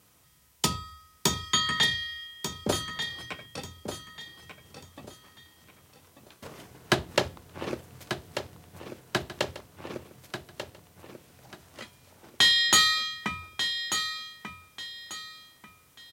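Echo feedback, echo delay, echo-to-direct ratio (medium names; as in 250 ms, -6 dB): 29%, 1190 ms, -8.5 dB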